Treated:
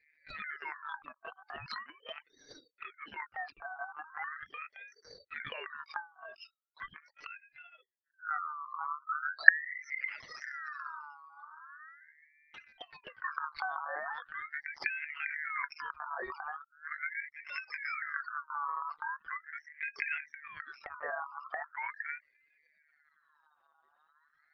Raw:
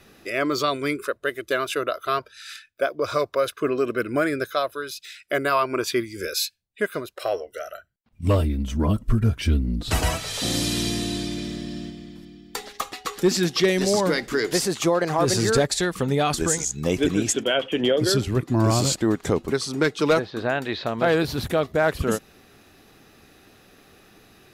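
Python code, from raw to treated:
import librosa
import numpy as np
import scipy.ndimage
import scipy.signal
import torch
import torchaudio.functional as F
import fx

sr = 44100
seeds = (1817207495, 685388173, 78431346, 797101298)

y = fx.spec_expand(x, sr, power=3.6)
y = fx.peak_eq(y, sr, hz=2600.0, db=11.5, octaves=0.6)
y = fx.lpc_monotone(y, sr, seeds[0], pitch_hz=150.0, order=8)
y = fx.env_flanger(y, sr, rest_ms=6.9, full_db=-18.5)
y = fx.ring_lfo(y, sr, carrier_hz=1600.0, swing_pct=30, hz=0.4)
y = y * librosa.db_to_amplitude(-13.5)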